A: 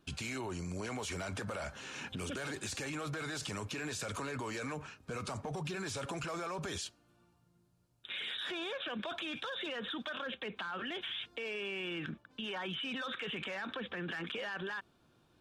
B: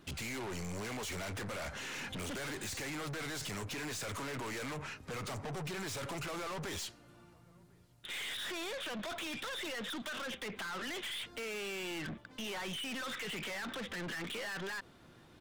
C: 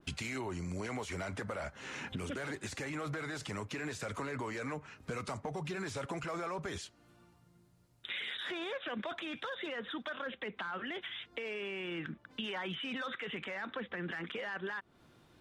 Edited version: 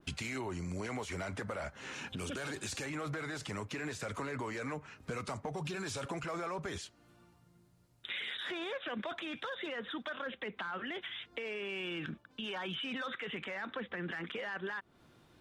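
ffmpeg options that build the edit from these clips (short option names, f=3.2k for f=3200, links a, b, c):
-filter_complex "[0:a]asplit=3[a][b][c];[2:a]asplit=4[d][e][f][g];[d]atrim=end=1.942[h];[a]atrim=start=1.938:end=2.862[i];[e]atrim=start=2.858:end=5.582[j];[b]atrim=start=5.578:end=6.082[k];[f]atrim=start=6.078:end=11.692[l];[c]atrim=start=11.688:end=12.852[m];[g]atrim=start=12.848[n];[h][i]acrossfade=d=0.004:c1=hsin:c2=hsin[o];[o][j]acrossfade=d=0.004:c1=hsin:c2=hsin[p];[p][k]acrossfade=d=0.004:c1=hsin:c2=hsin[q];[q][l]acrossfade=d=0.004:c1=hsin:c2=hsin[r];[r][m]acrossfade=d=0.004:c1=hsin:c2=hsin[s];[s][n]acrossfade=d=0.004:c1=hsin:c2=hsin"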